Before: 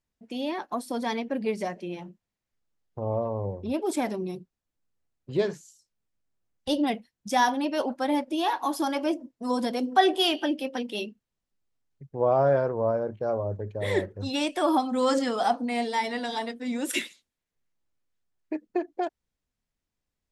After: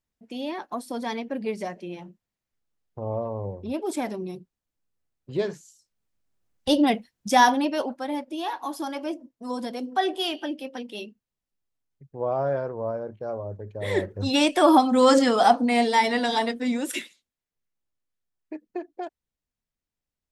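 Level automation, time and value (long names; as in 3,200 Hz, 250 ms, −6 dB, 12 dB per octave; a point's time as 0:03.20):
0:05.41 −1 dB
0:06.69 +5.5 dB
0:07.52 +5.5 dB
0:08.04 −4 dB
0:13.64 −4 dB
0:14.35 +7 dB
0:16.64 +7 dB
0:17.04 −5 dB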